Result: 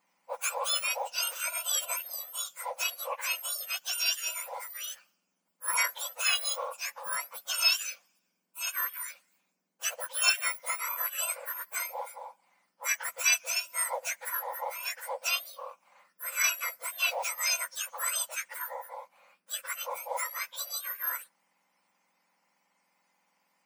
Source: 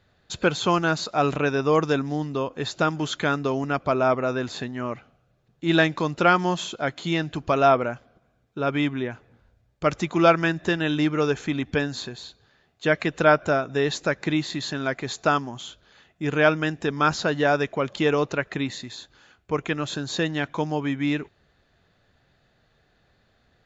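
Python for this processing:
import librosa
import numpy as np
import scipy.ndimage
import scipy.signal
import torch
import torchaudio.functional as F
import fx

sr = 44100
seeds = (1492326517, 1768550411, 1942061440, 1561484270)

y = fx.octave_mirror(x, sr, pivot_hz=1900.0)
y = F.gain(torch.from_numpy(y), -4.0).numpy()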